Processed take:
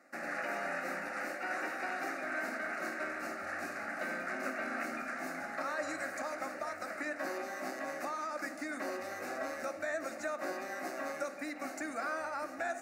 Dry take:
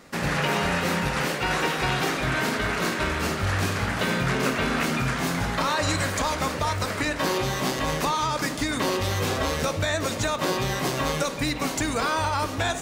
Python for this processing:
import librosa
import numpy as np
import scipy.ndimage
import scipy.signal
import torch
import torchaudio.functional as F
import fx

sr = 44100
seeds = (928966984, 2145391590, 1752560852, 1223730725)

y = scipy.signal.sosfilt(scipy.signal.butter(2, 380.0, 'highpass', fs=sr, output='sos'), x)
y = fx.high_shelf(y, sr, hz=3800.0, db=-11.0)
y = fx.fixed_phaser(y, sr, hz=660.0, stages=8)
y = y * librosa.db_to_amplitude(-7.0)